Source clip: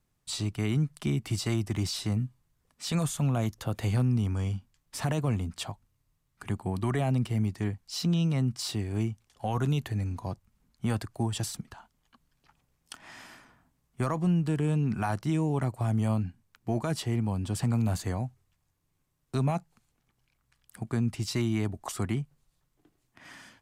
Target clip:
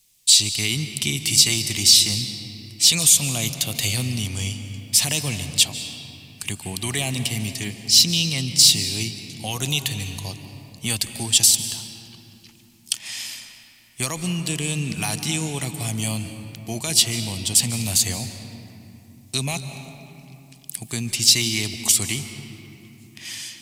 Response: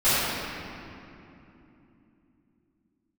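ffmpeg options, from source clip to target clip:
-filter_complex "[0:a]aexciter=amount=8.7:drive=7.6:freq=2200,asplit=2[s0][s1];[1:a]atrim=start_sample=2205,adelay=136[s2];[s1][s2]afir=irnorm=-1:irlink=0,volume=0.0398[s3];[s0][s3]amix=inputs=2:normalize=0,volume=0.891"

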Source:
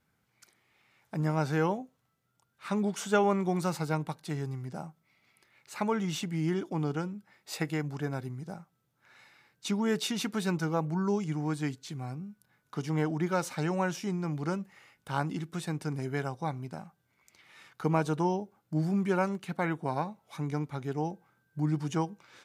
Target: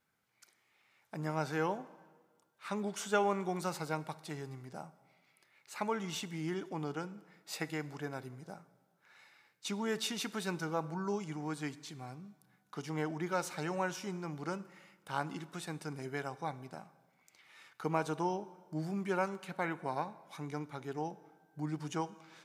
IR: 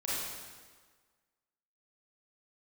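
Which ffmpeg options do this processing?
-filter_complex "[0:a]lowshelf=f=220:g=-11,asplit=2[s0][s1];[1:a]atrim=start_sample=2205[s2];[s1][s2]afir=irnorm=-1:irlink=0,volume=0.0841[s3];[s0][s3]amix=inputs=2:normalize=0,volume=0.668"

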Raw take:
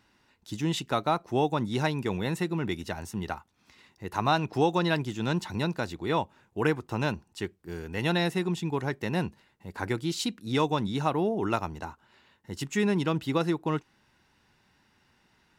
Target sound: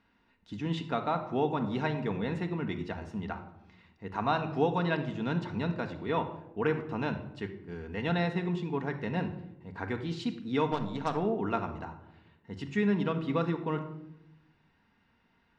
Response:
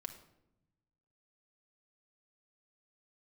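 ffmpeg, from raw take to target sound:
-filter_complex "[0:a]lowpass=3000,asettb=1/sr,asplit=3[s0][s1][s2];[s0]atrim=end=10.664[s3];[s1]atrim=start=10.66:end=11.17,asetpts=PTS-STARTPTS,afade=t=in:d=0.004:c=qsin,afade=t=out:st=0.506:d=0.004:c=qsin,aeval=exprs='0.237*(cos(1*acos(clip(val(0)/0.237,-1,1)))-cos(1*PI/2))+0.0211*(cos(7*acos(clip(val(0)/0.237,-1,1)))-cos(7*PI/2))':c=same[s4];[s2]atrim=start=11.166[s5];[s3][s4]acrossfade=d=0.004:c1=hsin:c2=qsin[s6];[s6][s5]acrossfade=d=0.004:c1=qsin:c2=hsin[s7];[1:a]atrim=start_sample=2205[s8];[s7][s8]afir=irnorm=-1:irlink=0"

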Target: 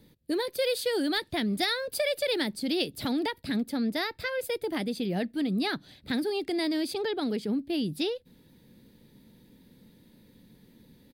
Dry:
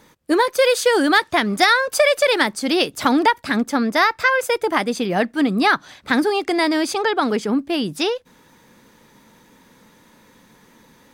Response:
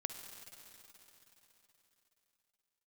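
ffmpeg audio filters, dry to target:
-filter_complex "[0:a]highshelf=f=5200:t=q:w=3:g=-6.5,acrossover=split=540[s0][s1];[s0]alimiter=limit=0.0891:level=0:latency=1:release=163[s2];[s2][s1]amix=inputs=2:normalize=0,firequalizer=gain_entry='entry(130,0);entry(1100,-24);entry(1800,-16);entry(11000,1)':delay=0.05:min_phase=1"

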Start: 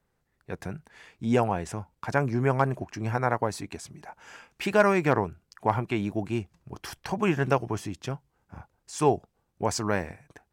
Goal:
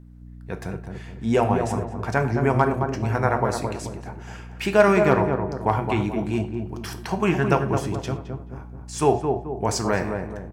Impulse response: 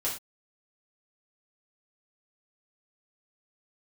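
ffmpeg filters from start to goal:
-filter_complex "[0:a]bandreject=f=121.5:t=h:w=4,bandreject=f=243:t=h:w=4,bandreject=f=364.5:t=h:w=4,bandreject=f=486:t=h:w=4,bandreject=f=607.5:t=h:w=4,bandreject=f=729:t=h:w=4,bandreject=f=850.5:t=h:w=4,bandreject=f=972:t=h:w=4,bandreject=f=1093.5:t=h:w=4,bandreject=f=1215:t=h:w=4,bandreject=f=1336.5:t=h:w=4,bandreject=f=1458:t=h:w=4,bandreject=f=1579.5:t=h:w=4,bandreject=f=1701:t=h:w=4,bandreject=f=1822.5:t=h:w=4,bandreject=f=1944:t=h:w=4,bandreject=f=2065.5:t=h:w=4,bandreject=f=2187:t=h:w=4,bandreject=f=2308.5:t=h:w=4,bandreject=f=2430:t=h:w=4,bandreject=f=2551.5:t=h:w=4,bandreject=f=2673:t=h:w=4,bandreject=f=2794.5:t=h:w=4,bandreject=f=2916:t=h:w=4,bandreject=f=3037.5:t=h:w=4,bandreject=f=3159:t=h:w=4,bandreject=f=3280.5:t=h:w=4,bandreject=f=3402:t=h:w=4,bandreject=f=3523.5:t=h:w=4,bandreject=f=3645:t=h:w=4,bandreject=f=3766.5:t=h:w=4,bandreject=f=3888:t=h:w=4,bandreject=f=4009.5:t=h:w=4,bandreject=f=4131:t=h:w=4,bandreject=f=4252.5:t=h:w=4,bandreject=f=4374:t=h:w=4,bandreject=f=4495.5:t=h:w=4,aeval=exprs='val(0)+0.00501*(sin(2*PI*60*n/s)+sin(2*PI*2*60*n/s)/2+sin(2*PI*3*60*n/s)/3+sin(2*PI*4*60*n/s)/4+sin(2*PI*5*60*n/s)/5)':c=same,asplit=2[s0][s1];[s1]adelay=216,lowpass=f=920:p=1,volume=0.631,asplit=2[s2][s3];[s3]adelay=216,lowpass=f=920:p=1,volume=0.47,asplit=2[s4][s5];[s5]adelay=216,lowpass=f=920:p=1,volume=0.47,asplit=2[s6][s7];[s7]adelay=216,lowpass=f=920:p=1,volume=0.47,asplit=2[s8][s9];[s9]adelay=216,lowpass=f=920:p=1,volume=0.47,asplit=2[s10][s11];[s11]adelay=216,lowpass=f=920:p=1,volume=0.47[s12];[s0][s2][s4][s6][s8][s10][s12]amix=inputs=7:normalize=0,asplit=2[s13][s14];[1:a]atrim=start_sample=2205[s15];[s14][s15]afir=irnorm=-1:irlink=0,volume=0.266[s16];[s13][s16]amix=inputs=2:normalize=0,volume=1.19"

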